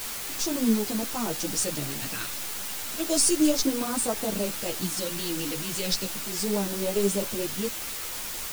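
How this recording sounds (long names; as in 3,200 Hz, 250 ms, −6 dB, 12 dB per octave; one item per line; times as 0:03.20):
phaser sweep stages 2, 0.32 Hz, lowest notch 790–2,100 Hz
a quantiser's noise floor 6 bits, dither triangular
a shimmering, thickened sound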